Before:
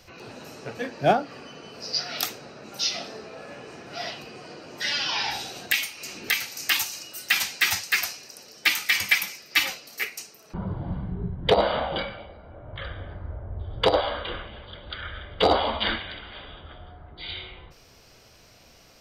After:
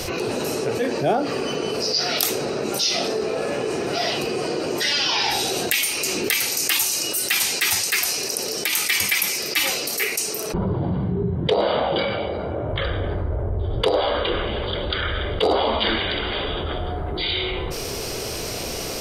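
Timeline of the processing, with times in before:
7.99–8.73 s: compression, threshold -27 dBFS
10.73–12.70 s: Chebyshev band-pass 100–6200 Hz
whole clip: fifteen-band graphic EQ 400 Hz +9 dB, 1.6 kHz -3 dB, 10 kHz +11 dB; level flattener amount 70%; trim -6.5 dB

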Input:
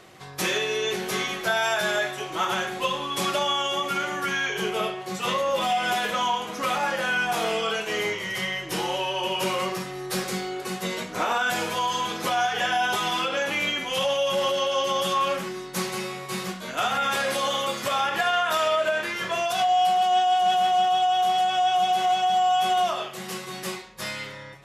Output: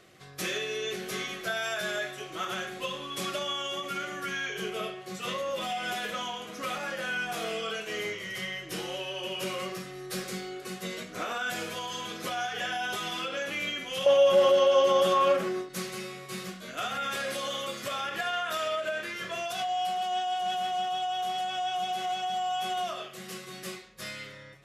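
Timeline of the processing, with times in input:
14.06–15.69 s: peaking EQ 610 Hz +12.5 dB 2.7 oct
whole clip: peaking EQ 900 Hz -14.5 dB 0.28 oct; endings held to a fixed fall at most 150 dB/s; trim -6.5 dB

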